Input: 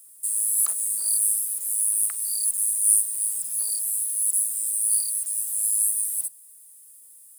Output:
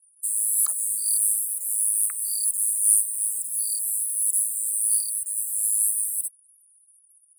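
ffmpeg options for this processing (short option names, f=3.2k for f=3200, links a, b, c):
-filter_complex "[0:a]asettb=1/sr,asplit=3[a][b][c];[a]atrim=end=4.974[d];[b]atrim=start=4.97:end=5.37,asetpts=PTS-STARTPTS,afade=t=in:d=0.004:c=qsin,afade=t=out:st=0.396:d=0.004:c=qsin,aeval=exprs='sgn(val(0))*max(abs(val(0))-0.0075,0)':c=same[e];[c]atrim=start=5.366[f];[d][e]acrossfade=d=0.004:c1=hsin:c2=qsin[g];[g][f]acrossfade=d=0.004:c1=qsin:c2=hsin,highpass=f=480:w=0.5412,highpass=f=480:w=1.3066,afftfilt=real='re*gte(hypot(re,im),0.00891)':imag='im*gte(hypot(re,im),0.00891)':win_size=1024:overlap=0.75"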